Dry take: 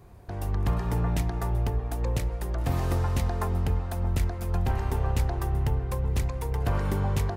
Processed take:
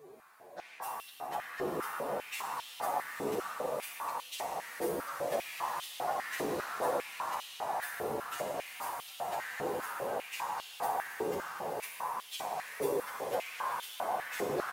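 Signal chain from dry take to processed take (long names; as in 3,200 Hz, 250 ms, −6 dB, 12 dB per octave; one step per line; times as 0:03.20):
high-shelf EQ 7,800 Hz +5.5 dB
downward compressor 6 to 1, threshold −28 dBFS, peak gain reduction 8 dB
random phases in short frames
feedback delay with all-pass diffusion 496 ms, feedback 41%, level −4 dB
phase-vocoder stretch with locked phases 2×
double-tracking delay 14 ms −11 dB
convolution reverb RT60 4.6 s, pre-delay 32 ms, DRR −0.5 dB
high-pass on a step sequencer 5 Hz 410–3,200 Hz
level −3 dB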